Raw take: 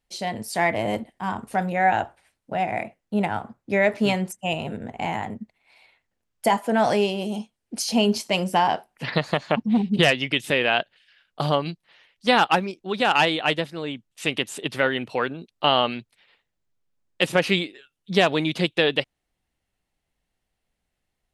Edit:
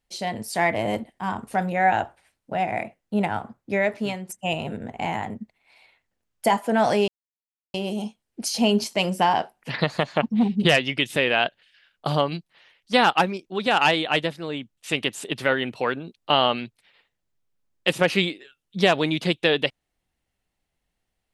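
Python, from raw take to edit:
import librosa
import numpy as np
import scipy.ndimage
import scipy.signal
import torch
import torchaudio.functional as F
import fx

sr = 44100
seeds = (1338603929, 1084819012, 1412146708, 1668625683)

y = fx.edit(x, sr, fx.fade_out_to(start_s=3.56, length_s=0.73, floor_db=-11.5),
    fx.insert_silence(at_s=7.08, length_s=0.66), tone=tone)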